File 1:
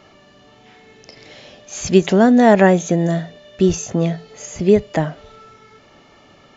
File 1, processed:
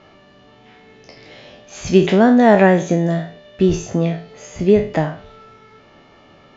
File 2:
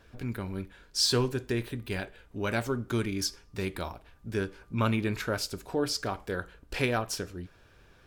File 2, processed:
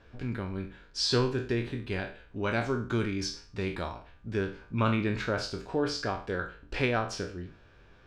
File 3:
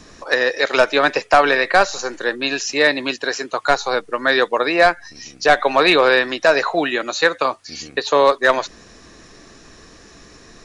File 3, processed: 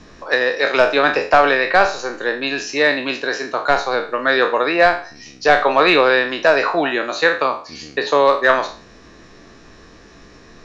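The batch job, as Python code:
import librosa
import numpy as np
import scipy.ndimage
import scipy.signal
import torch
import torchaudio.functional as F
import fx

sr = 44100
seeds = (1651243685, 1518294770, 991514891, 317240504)

y = fx.spec_trails(x, sr, decay_s=0.4)
y = fx.air_absorb(y, sr, metres=120.0)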